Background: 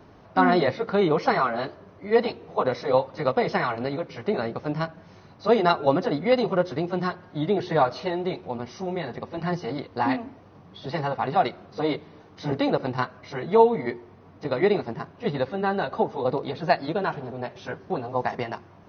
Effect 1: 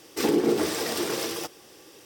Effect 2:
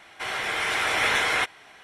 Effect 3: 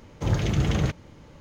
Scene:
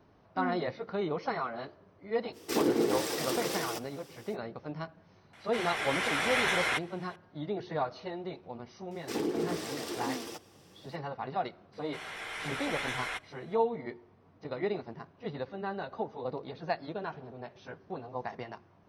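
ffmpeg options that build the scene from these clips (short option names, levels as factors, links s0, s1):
-filter_complex "[1:a]asplit=2[s0][s1];[2:a]asplit=2[s2][s3];[0:a]volume=0.266[s4];[s1]highshelf=f=12000:g=-8[s5];[s3]asubboost=boost=9.5:cutoff=53[s6];[s0]atrim=end=2.05,asetpts=PTS-STARTPTS,volume=0.562,afade=t=in:d=0.05,afade=t=out:st=2:d=0.05,adelay=2320[s7];[s2]atrim=end=1.83,asetpts=PTS-STARTPTS,volume=0.501,afade=t=in:d=0.004:c=hsin,afade=t=out:st=1.826:d=0.004:c=hsin,adelay=235053S[s8];[s5]atrim=end=2.05,asetpts=PTS-STARTPTS,volume=0.335,afade=t=in:d=0.004:c=hsin,afade=t=out:st=2.046:d=0.004:c=hsin,adelay=8910[s9];[s6]atrim=end=1.83,asetpts=PTS-STARTPTS,volume=0.224,afade=t=in:d=0.004:c=hsin,afade=t=out:st=1.826:d=0.004:c=hsin,adelay=11730[s10];[s4][s7][s8][s9][s10]amix=inputs=5:normalize=0"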